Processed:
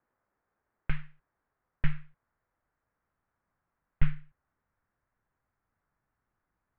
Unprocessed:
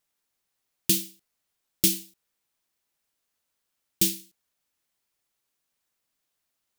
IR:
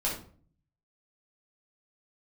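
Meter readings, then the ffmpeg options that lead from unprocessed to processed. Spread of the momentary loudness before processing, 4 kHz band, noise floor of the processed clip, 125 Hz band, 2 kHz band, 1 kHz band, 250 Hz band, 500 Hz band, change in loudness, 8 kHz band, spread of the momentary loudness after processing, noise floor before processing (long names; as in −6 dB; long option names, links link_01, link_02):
13 LU, −24.5 dB, −85 dBFS, +5.0 dB, 0.0 dB, can't be measured, −9.0 dB, −17.0 dB, −13.0 dB, below −40 dB, 13 LU, −81 dBFS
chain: -af "asubboost=boost=11:cutoff=230,highpass=frequency=340:width_type=q:width=0.5412,highpass=frequency=340:width_type=q:width=1.307,lowpass=frequency=2000:width_type=q:width=0.5176,lowpass=frequency=2000:width_type=q:width=0.7071,lowpass=frequency=2000:width_type=q:width=1.932,afreqshift=-340,volume=8.5dB"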